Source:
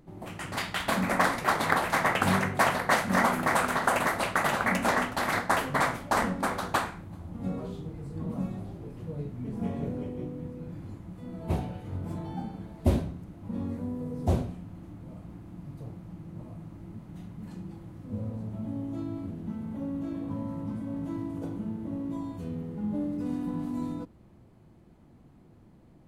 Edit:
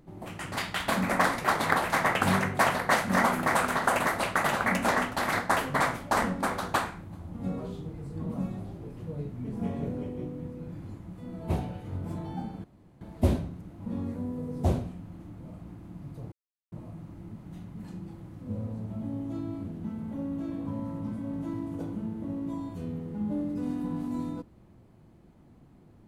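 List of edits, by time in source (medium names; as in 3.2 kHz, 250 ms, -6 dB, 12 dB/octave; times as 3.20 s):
12.64 s: insert room tone 0.37 s
15.95–16.35 s: mute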